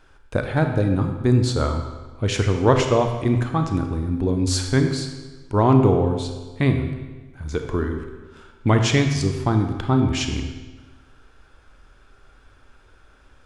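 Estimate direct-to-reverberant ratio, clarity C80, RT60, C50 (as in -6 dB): 5.0 dB, 7.5 dB, 1.3 s, 6.0 dB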